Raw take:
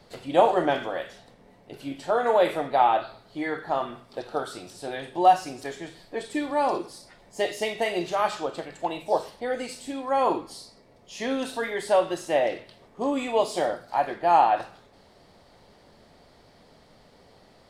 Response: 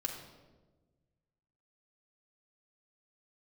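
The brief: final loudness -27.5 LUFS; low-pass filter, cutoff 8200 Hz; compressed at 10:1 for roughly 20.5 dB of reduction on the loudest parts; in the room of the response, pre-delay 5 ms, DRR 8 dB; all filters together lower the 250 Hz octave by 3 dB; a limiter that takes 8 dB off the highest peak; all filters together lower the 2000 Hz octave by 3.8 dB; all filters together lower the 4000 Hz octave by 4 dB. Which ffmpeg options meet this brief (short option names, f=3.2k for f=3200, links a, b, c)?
-filter_complex "[0:a]lowpass=8.2k,equalizer=f=250:t=o:g=-4,equalizer=f=2k:t=o:g=-4,equalizer=f=4k:t=o:g=-3.5,acompressor=threshold=-35dB:ratio=10,alimiter=level_in=7.5dB:limit=-24dB:level=0:latency=1,volume=-7.5dB,asplit=2[a][b];[1:a]atrim=start_sample=2205,adelay=5[c];[b][c]afir=irnorm=-1:irlink=0,volume=-9.5dB[d];[a][d]amix=inputs=2:normalize=0,volume=14.5dB"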